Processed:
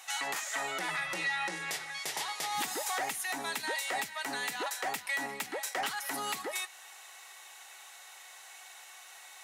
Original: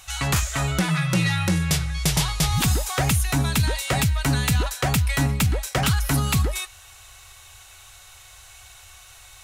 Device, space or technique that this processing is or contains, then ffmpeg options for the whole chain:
laptop speaker: -filter_complex "[0:a]highpass=frequency=310:width=0.5412,highpass=frequency=310:width=1.3066,equalizer=frequency=830:width_type=o:width=0.43:gain=7,equalizer=frequency=1900:width_type=o:width=0.28:gain=9,alimiter=limit=-18.5dB:level=0:latency=1:release=210,asettb=1/sr,asplit=3[link_01][link_02][link_03];[link_01]atrim=end=1.184[link_04];[link_02]atrim=start=1.18:end=1.68,asetpts=PTS-STARTPTS,afade=type=in:duration=0.004:curve=qsin,afade=type=out:start_time=0.496:duration=0.004:curve=qsin,lowpass=9300[link_05];[link_03]atrim=start=1.676[link_06];[link_04][link_05]acrossfade=duration=0.004:curve1=hsin:curve2=qsin[link_07];[link_07][link_06]acrossfade=duration=0.004:curve1=qsin:curve2=hsin,volume=-5dB"

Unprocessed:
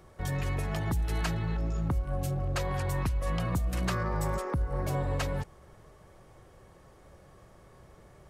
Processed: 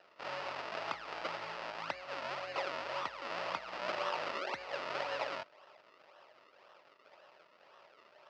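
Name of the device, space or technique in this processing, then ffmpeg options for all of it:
circuit-bent sampling toy: -af "acrusher=samples=38:mix=1:aa=0.000001:lfo=1:lforange=38:lforate=1.9,highpass=580,equalizer=frequency=610:width_type=q:width=4:gain=9,equalizer=frequency=920:width_type=q:width=4:gain=6,equalizer=frequency=1300:width_type=q:width=4:gain=8,equalizer=frequency=1900:width_type=q:width=4:gain=5,equalizer=frequency=2700:width_type=q:width=4:gain=8,equalizer=frequency=4900:width_type=q:width=4:gain=7,lowpass=frequency=5000:width=0.5412,lowpass=frequency=5000:width=1.3066,volume=-5dB"

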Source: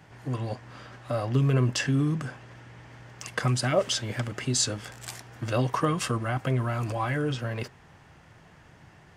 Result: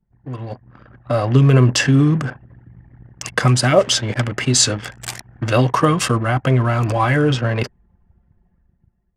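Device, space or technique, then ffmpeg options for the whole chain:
voice memo with heavy noise removal: -filter_complex "[0:a]asettb=1/sr,asplit=3[link_01][link_02][link_03];[link_01]atrim=end=4.144[link_04];[link_02]atrim=start=4.14:end=5.61,asetpts=PTS-STARTPTS,afade=type=in:duration=0.004:curve=qsin,afade=type=out:start_time=1.466:duration=0.004:curve=qsin,adynamicequalizer=threshold=0.00708:dfrequency=2200:dqfactor=0.97:tfrequency=2200:tqfactor=0.97:attack=5:release=100:ratio=0.375:range=1.5:mode=boostabove:tftype=bell[link_05];[link_03]atrim=start=5.606[link_06];[link_04][link_05]acrossfade=duration=0.004:curve1=hsin:curve2=qsin[link_07];[link_07][link_06]acrossfade=duration=0.004:curve1=qsin:curve2=hsin,anlmdn=0.398,dynaudnorm=framelen=150:gausssize=11:maxgain=12dB,volume=1dB"

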